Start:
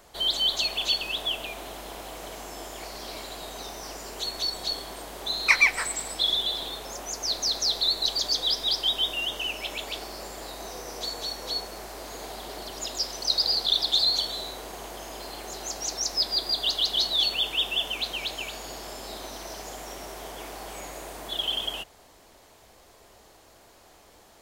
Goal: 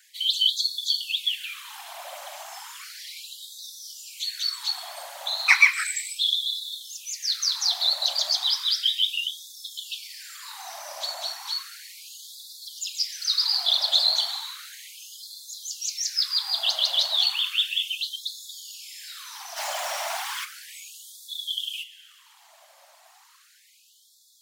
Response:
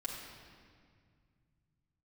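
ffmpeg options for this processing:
-filter_complex "[0:a]asplit=2[link_01][link_02];[1:a]atrim=start_sample=2205,lowshelf=frequency=240:gain=7,adelay=28[link_03];[link_02][link_03]afir=irnorm=-1:irlink=0,volume=-11.5dB[link_04];[link_01][link_04]amix=inputs=2:normalize=0,asplit=3[link_05][link_06][link_07];[link_05]afade=type=out:start_time=19.56:duration=0.02[link_08];[link_06]asplit=2[link_09][link_10];[link_10]highpass=frequency=720:poles=1,volume=37dB,asoftclip=type=tanh:threshold=-24dB[link_11];[link_09][link_11]amix=inputs=2:normalize=0,lowpass=frequency=5100:poles=1,volume=-6dB,afade=type=in:start_time=19.56:duration=0.02,afade=type=out:start_time=20.44:duration=0.02[link_12];[link_07]afade=type=in:start_time=20.44:duration=0.02[link_13];[link_08][link_12][link_13]amix=inputs=3:normalize=0,afftfilt=real='hypot(re,im)*cos(2*PI*random(0))':imag='hypot(re,im)*sin(2*PI*random(1))':win_size=512:overlap=0.75,afftfilt=real='re*gte(b*sr/1024,530*pow(3400/530,0.5+0.5*sin(2*PI*0.34*pts/sr)))':imag='im*gte(b*sr/1024,530*pow(3400/530,0.5+0.5*sin(2*PI*0.34*pts/sr)))':win_size=1024:overlap=0.75,volume=7.5dB"

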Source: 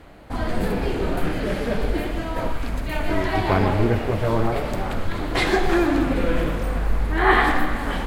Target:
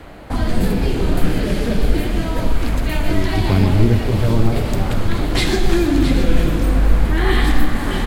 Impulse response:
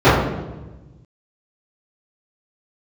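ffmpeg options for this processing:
-filter_complex "[0:a]acrossover=split=300|3000[link_01][link_02][link_03];[link_02]acompressor=threshold=-36dB:ratio=4[link_04];[link_01][link_04][link_03]amix=inputs=3:normalize=0,asplit=2[link_05][link_06];[link_06]aecho=0:1:670:0.335[link_07];[link_05][link_07]amix=inputs=2:normalize=0,volume=8dB"

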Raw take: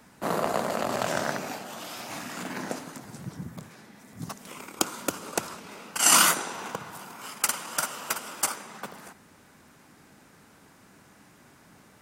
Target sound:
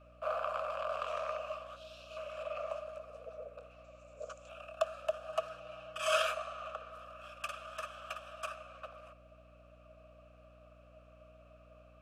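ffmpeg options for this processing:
ffmpeg -i in.wav -filter_complex "[0:a]asplit=3[link_01][link_02][link_03];[link_01]bandpass=frequency=300:width_type=q:width=8,volume=0dB[link_04];[link_02]bandpass=frequency=870:width_type=q:width=8,volume=-6dB[link_05];[link_03]bandpass=frequency=2240:width_type=q:width=8,volume=-9dB[link_06];[link_04][link_05][link_06]amix=inputs=3:normalize=0,afreqshift=330,asettb=1/sr,asplit=3[link_07][link_08][link_09];[link_07]atrim=end=1.764[link_10];[link_08]atrim=start=1.76:end=2.17,asetpts=PTS-STARTPTS,afade=type=in:duration=0.004:curve=qsin,afade=type=out:start_time=0.406:duration=0.004:curve=qsin,equalizer=frequency=1000:width_type=o:width=1:gain=-12,equalizer=frequency=2000:width_type=o:width=1:gain=-8,equalizer=frequency=4000:width_type=o:width=1:gain=7[link_11];[link_09]atrim=start=2.166[link_12];[link_10][link_11]acrossfade=duration=0.004:curve1=hsin:curve2=qsin[link_13];[link_13][link_12]acrossfade=duration=0.004:curve1=qsin:curve2=hsin,aeval=exprs='val(0)+0.000562*(sin(2*PI*60*n/s)+sin(2*PI*2*60*n/s)/2+sin(2*PI*3*60*n/s)/3+sin(2*PI*4*60*n/s)/4+sin(2*PI*5*60*n/s)/5)':channel_layout=same,asettb=1/sr,asplit=3[link_14][link_15][link_16];[link_14]atrim=end=3.844[link_17];[link_15]atrim=start=3.84:end=4.49,asetpts=PTS-STARTPTS,afade=type=in:duration=0.004:curve=qsin,afade=type=out:start_time=0.646:duration=0.004:curve=qsin,lowpass=frequency=7200:width_type=q:width=6.6[link_18];[link_16]atrim=start=4.486[link_19];[link_17][link_18]acrossfade=duration=0.004:curve1=hsin:curve2=qsin[link_20];[link_20][link_19]acrossfade=duration=0.004:curve1=qsin:curve2=hsin,asettb=1/sr,asplit=3[link_21][link_22][link_23];[link_21]atrim=end=5.294[link_24];[link_22]atrim=start=5.29:end=6.22,asetpts=PTS-STARTPTS,afade=type=in:duration=0.004:curve=qsin,afade=type=out:start_time=0.926:duration=0.004:curve=qsin,aecho=1:1:6.3:0.67,atrim=end_sample=41013[link_25];[link_23]atrim=start=6.216[link_26];[link_24][link_25]acrossfade=duration=0.004:curve1=hsin:curve2=qsin[link_27];[link_27][link_26]acrossfade=duration=0.004:curve1=qsin:curve2=hsin,volume=5dB" out.wav

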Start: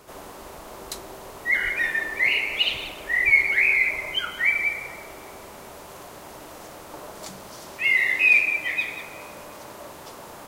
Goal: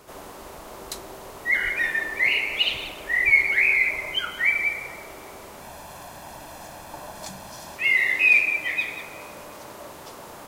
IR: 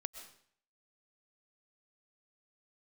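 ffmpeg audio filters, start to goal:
-filter_complex "[0:a]asettb=1/sr,asplit=3[link_01][link_02][link_03];[link_01]atrim=end=5.614[link_04];[link_02]atrim=start=5.61:end=7.76,asetpts=PTS-STARTPTS,afade=type=in:duration=0.004:curve=qsin,afade=type=out:start_time=2.146:duration=0.004:curve=qsin,aecho=1:1:1.2:0.56,atrim=end_sample=94815[link_05];[link_03]atrim=start=7.756[link_06];[link_04][link_05]acrossfade=duration=0.004:curve1=hsin:curve2=qsin[link_07];[link_07][link_06]acrossfade=duration=0.004:curve1=qsin:curve2=hsin"

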